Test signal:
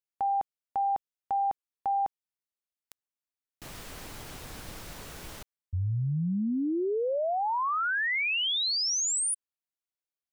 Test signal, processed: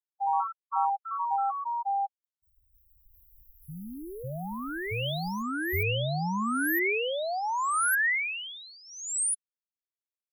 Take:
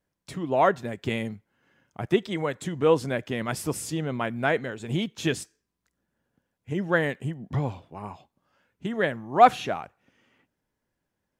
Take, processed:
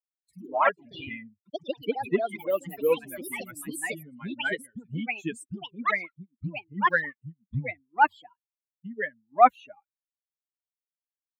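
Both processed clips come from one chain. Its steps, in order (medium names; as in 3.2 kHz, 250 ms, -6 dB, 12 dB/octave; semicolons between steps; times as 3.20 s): expander on every frequency bin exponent 3; FFT filter 640 Hz 0 dB, 1.9 kHz +6 dB, 5 kHz -23 dB, 8.3 kHz +3 dB; ever faster or slower copies 92 ms, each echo +3 st, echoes 3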